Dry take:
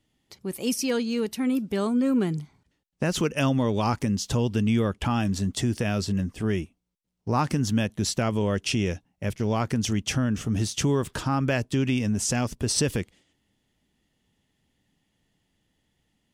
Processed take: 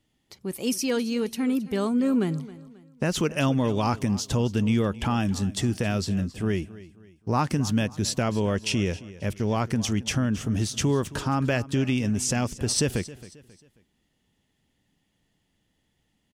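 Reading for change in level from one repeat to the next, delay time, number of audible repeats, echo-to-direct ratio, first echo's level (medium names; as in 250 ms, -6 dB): -8.5 dB, 269 ms, 3, -17.5 dB, -18.0 dB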